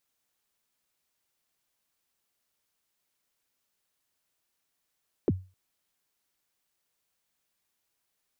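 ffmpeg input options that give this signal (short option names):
-f lavfi -i "aevalsrc='0.133*pow(10,-3*t/0.31)*sin(2*PI*(480*0.035/log(93/480)*(exp(log(93/480)*min(t,0.035)/0.035)-1)+93*max(t-0.035,0)))':d=0.26:s=44100"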